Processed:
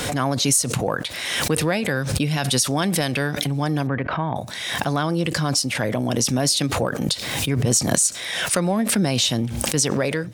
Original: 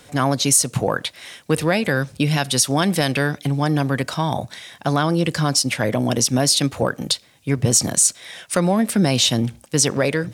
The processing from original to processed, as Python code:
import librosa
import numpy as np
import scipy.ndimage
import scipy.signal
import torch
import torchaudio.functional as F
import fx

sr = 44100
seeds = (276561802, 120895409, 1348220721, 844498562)

y = fx.lowpass(x, sr, hz=2400.0, slope=24, at=(3.87, 4.36))
y = fx.pre_swell(y, sr, db_per_s=35.0)
y = y * librosa.db_to_amplitude(-3.5)